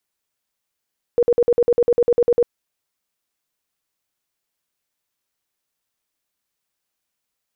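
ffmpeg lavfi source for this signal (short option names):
-f lavfi -i "aevalsrc='0.282*sin(2*PI*478*mod(t,0.1))*lt(mod(t,0.1),23/478)':d=1.3:s=44100"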